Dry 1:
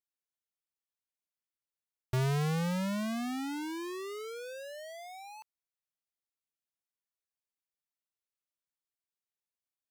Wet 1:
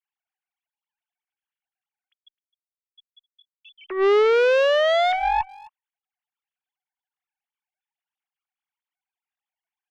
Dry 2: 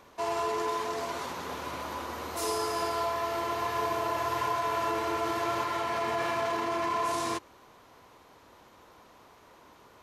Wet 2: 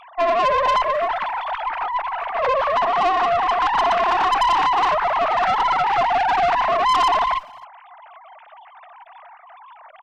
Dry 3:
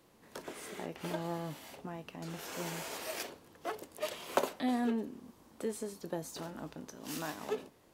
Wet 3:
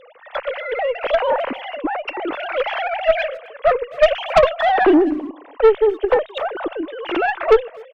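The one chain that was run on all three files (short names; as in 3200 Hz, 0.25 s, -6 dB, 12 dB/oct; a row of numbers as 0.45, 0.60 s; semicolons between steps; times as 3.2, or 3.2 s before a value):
sine-wave speech; tube stage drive 31 dB, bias 0.4; speakerphone echo 0.26 s, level -20 dB; match loudness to -19 LUFS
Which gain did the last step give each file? +17.0, +16.5, +25.0 dB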